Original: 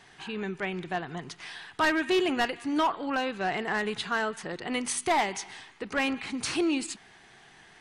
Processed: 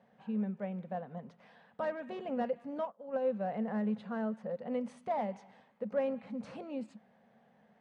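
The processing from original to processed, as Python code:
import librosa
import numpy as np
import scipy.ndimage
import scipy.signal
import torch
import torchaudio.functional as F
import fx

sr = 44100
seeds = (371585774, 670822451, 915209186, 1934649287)

y = fx.double_bandpass(x, sr, hz=340.0, octaves=1.3)
y = fx.upward_expand(y, sr, threshold_db=-50.0, expansion=2.5, at=(2.85, 3.25))
y = F.gain(torch.from_numpy(y), 5.0).numpy()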